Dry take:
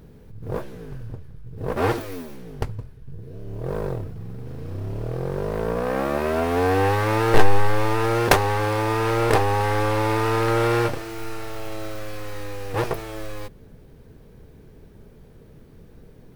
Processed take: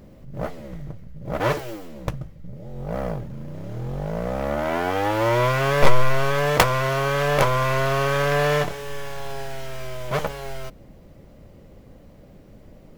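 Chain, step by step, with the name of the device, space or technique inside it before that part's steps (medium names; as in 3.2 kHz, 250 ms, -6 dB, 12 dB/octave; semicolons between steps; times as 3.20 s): nightcore (tape speed +26%)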